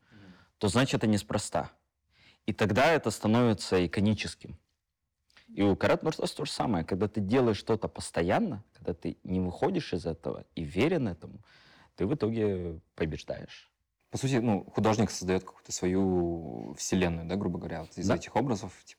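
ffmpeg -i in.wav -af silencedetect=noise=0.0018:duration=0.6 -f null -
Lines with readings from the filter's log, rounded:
silence_start: 4.58
silence_end: 5.30 | silence_duration: 0.73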